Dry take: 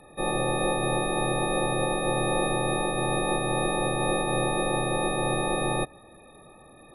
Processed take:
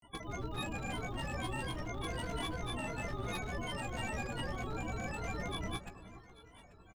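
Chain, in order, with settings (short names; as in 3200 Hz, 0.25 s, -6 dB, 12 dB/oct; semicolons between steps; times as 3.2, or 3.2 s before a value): downsampling 22050 Hz; in parallel at -1.5 dB: compressor 4:1, threshold -43 dBFS, peak gain reduction 17 dB; on the sum: pitch shift -11.5 st; fixed phaser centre 1600 Hz, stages 8; one-sided clip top -26.5 dBFS, bottom -19 dBFS; grains, grains 20/s, pitch spread up and down by 12 st; pre-emphasis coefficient 0.8; doubler 16 ms -10 dB; on a send: echo with dull and thin repeats by turns 0.419 s, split 1300 Hz, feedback 51%, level -13 dB; on the sum: gain +5.5 dB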